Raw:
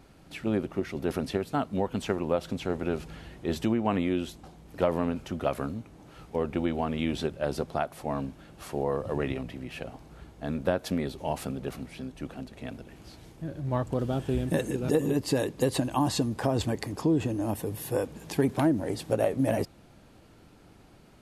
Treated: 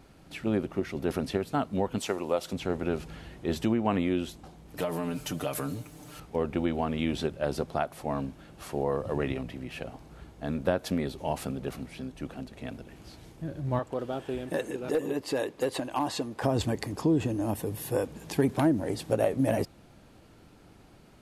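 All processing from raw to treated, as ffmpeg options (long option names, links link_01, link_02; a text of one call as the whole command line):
ffmpeg -i in.wav -filter_complex "[0:a]asettb=1/sr,asplit=3[link_01][link_02][link_03];[link_01]atrim=end=1.984[link_04];[link_02]atrim=start=1.98:end=2.53,asetpts=PTS-STARTPTS,afade=type=in:duration=0.004:curve=qsin,afade=type=out:start_time=0.546:duration=0.004:curve=qsin,highpass=49,bass=frequency=250:gain=-10,treble=frequency=4000:gain=7,bandreject=frequency=1600:width=13[link_05];[link_03]atrim=start=2.526[link_06];[link_04][link_05]acrossfade=duration=0.004:curve1=hsin:curve2=qsin[link_07];[link_07][link_06]acrossfade=duration=0.004:curve1=qsin:curve2=hsin,asettb=1/sr,asplit=3[link_08][link_09][link_10];[link_08]atrim=end=4.774[link_11];[link_09]atrim=start=4.77:end=6.2,asetpts=PTS-STARTPTS,afade=type=in:duration=0.004:curve=qsin,afade=type=out:start_time=1.426:duration=0.004:curve=qsin,aemphasis=mode=production:type=75kf,aecho=1:1:6.7:0.8,atrim=end_sample=63063,acompressor=threshold=-28dB:ratio=3:attack=3.2:release=140:knee=1:detection=peak[link_12];[link_10]atrim=start=6.196[link_13];[link_11][link_12]acrossfade=duration=0.004:curve1=hsin:curve2=qsin[link_14];[link_14][link_13]acrossfade=duration=0.004:curve1=qsin:curve2=hsin,asettb=1/sr,asplit=3[link_15][link_16][link_17];[link_15]atrim=end=13.794[link_18];[link_16]atrim=start=13.79:end=16.42,asetpts=PTS-STARTPTS,afade=type=in:duration=0.004:curve=qsin,afade=type=out:start_time=2.626:duration=0.004:curve=qsin,bass=frequency=250:gain=-14,treble=frequency=4000:gain=-6,asoftclip=type=hard:threshold=-20.5dB[link_19];[link_17]atrim=start=16.416[link_20];[link_18][link_19]acrossfade=duration=0.004:curve1=hsin:curve2=qsin[link_21];[link_21][link_20]acrossfade=duration=0.004:curve1=qsin:curve2=hsin" out.wav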